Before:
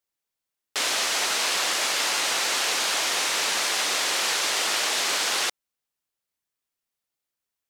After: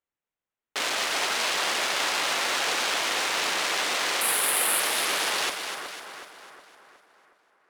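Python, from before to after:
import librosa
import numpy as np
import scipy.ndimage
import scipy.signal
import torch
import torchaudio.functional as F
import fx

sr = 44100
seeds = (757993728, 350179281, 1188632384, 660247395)

y = fx.wiener(x, sr, points=9)
y = fx.high_shelf_res(y, sr, hz=8000.0, db=11.5, q=3.0, at=(4.21, 4.8))
y = fx.echo_split(y, sr, split_hz=1800.0, low_ms=366, high_ms=251, feedback_pct=52, wet_db=-7.0)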